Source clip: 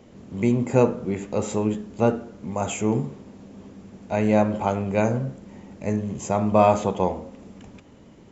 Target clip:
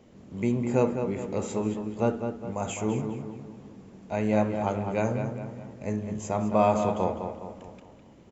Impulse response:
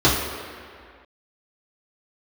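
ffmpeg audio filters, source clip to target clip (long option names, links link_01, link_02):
-filter_complex "[0:a]asplit=2[link_01][link_02];[link_02]adelay=206,lowpass=frequency=3300:poles=1,volume=-7dB,asplit=2[link_03][link_04];[link_04]adelay=206,lowpass=frequency=3300:poles=1,volume=0.49,asplit=2[link_05][link_06];[link_06]adelay=206,lowpass=frequency=3300:poles=1,volume=0.49,asplit=2[link_07][link_08];[link_08]adelay=206,lowpass=frequency=3300:poles=1,volume=0.49,asplit=2[link_09][link_10];[link_10]adelay=206,lowpass=frequency=3300:poles=1,volume=0.49,asplit=2[link_11][link_12];[link_12]adelay=206,lowpass=frequency=3300:poles=1,volume=0.49[link_13];[link_01][link_03][link_05][link_07][link_09][link_11][link_13]amix=inputs=7:normalize=0,volume=-5.5dB"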